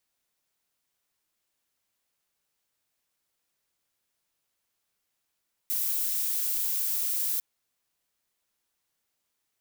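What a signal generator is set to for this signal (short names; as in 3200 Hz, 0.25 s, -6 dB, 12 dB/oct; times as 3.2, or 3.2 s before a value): noise violet, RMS -28.5 dBFS 1.70 s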